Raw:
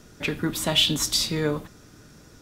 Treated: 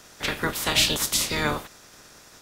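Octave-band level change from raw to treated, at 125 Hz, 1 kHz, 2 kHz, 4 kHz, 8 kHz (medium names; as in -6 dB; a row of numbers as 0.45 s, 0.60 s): -4.0 dB, +6.0 dB, +5.0 dB, -1.5 dB, +2.5 dB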